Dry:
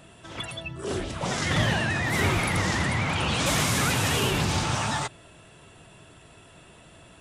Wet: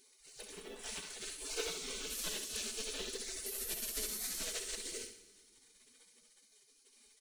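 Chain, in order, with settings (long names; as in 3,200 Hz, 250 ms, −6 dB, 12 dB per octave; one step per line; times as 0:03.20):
gate on every frequency bin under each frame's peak −25 dB weak
low shelf with overshoot 590 Hz +12 dB, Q 1.5
notch filter 5,000 Hz, Q 23
comb filter 4.6 ms, depth 40%
in parallel at −1 dB: downward compressor, threshold −45 dBFS, peak gain reduction 14.5 dB
on the sum: floating-point word with a short mantissa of 2 bits
flutter between parallel walls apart 11.3 metres, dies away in 0.45 s
on a send at −12 dB: convolution reverb RT60 1.7 s, pre-delay 4 ms
on the sum: level −5 dB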